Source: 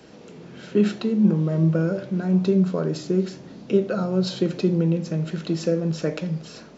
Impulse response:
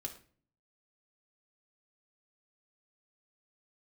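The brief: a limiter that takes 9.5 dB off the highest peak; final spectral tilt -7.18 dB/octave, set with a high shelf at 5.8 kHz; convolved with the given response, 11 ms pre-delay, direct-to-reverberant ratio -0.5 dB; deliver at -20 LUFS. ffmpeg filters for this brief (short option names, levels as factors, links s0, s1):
-filter_complex "[0:a]highshelf=f=5800:g=8,alimiter=limit=0.141:level=0:latency=1,asplit=2[s0][s1];[1:a]atrim=start_sample=2205,adelay=11[s2];[s1][s2]afir=irnorm=-1:irlink=0,volume=1.33[s3];[s0][s3]amix=inputs=2:normalize=0,volume=1.19"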